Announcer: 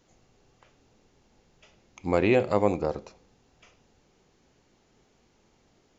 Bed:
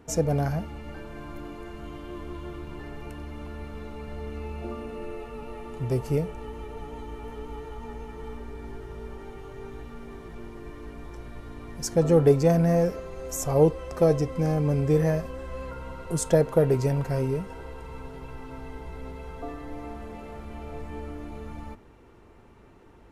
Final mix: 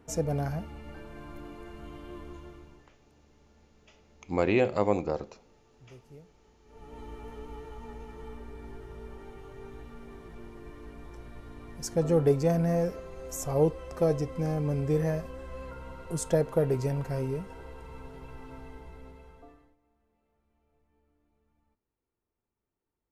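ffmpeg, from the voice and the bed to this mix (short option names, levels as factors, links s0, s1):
-filter_complex "[0:a]adelay=2250,volume=0.75[s0];[1:a]volume=5.96,afade=t=out:st=2.14:d=0.76:silence=0.0944061,afade=t=in:st=6.64:d=0.41:silence=0.0944061,afade=t=out:st=18.51:d=1.25:silence=0.0316228[s1];[s0][s1]amix=inputs=2:normalize=0"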